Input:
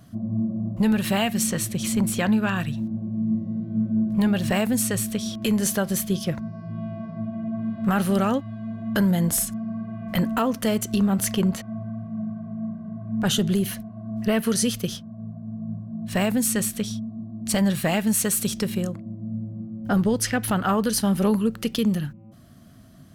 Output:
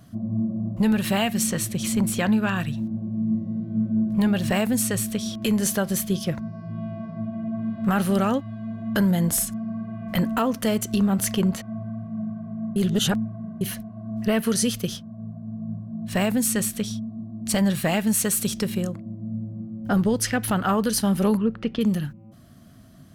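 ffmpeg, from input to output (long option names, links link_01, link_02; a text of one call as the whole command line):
ffmpeg -i in.wav -filter_complex "[0:a]asettb=1/sr,asplit=3[link_01][link_02][link_03];[link_01]atrim=end=21.374[link_04];[link_02]atrim=start=21.37:end=21.81,asetpts=PTS-STARTPTS,afade=type=in:duration=0.004:curve=qsin,afade=type=out:start_time=0.436:duration=0.004:curve=qsin,lowpass=2300[link_05];[link_03]atrim=start=21.806[link_06];[link_04][link_05]acrossfade=duration=0.004:curve1=hsin:curve2=qsin[link_07];[link_07][link_06]acrossfade=duration=0.004:curve1=qsin:curve2=hsin,asplit=3[link_08][link_09][link_10];[link_08]atrim=end=12.762[link_11];[link_09]atrim=start=12.758:end=13.612,asetpts=PTS-STARTPTS,areverse[link_12];[link_10]atrim=start=13.608[link_13];[link_11][link_12]acrossfade=duration=0.004:curve1=hsin:curve2=hsin[link_14];[link_14][link_13]acrossfade=duration=0.004:curve1=hsin:curve2=hsin" out.wav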